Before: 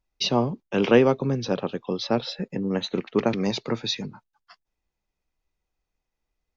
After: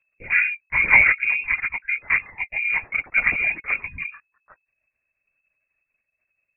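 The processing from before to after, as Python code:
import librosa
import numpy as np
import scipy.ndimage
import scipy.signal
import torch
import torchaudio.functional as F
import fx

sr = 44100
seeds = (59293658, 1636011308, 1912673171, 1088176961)

y = fx.freq_invert(x, sr, carrier_hz=2600)
y = fx.spec_erase(y, sr, start_s=3.87, length_s=0.2, low_hz=440.0, high_hz=960.0)
y = fx.lpc_vocoder(y, sr, seeds[0], excitation='whisper', order=16)
y = F.gain(torch.from_numpy(y), 2.5).numpy()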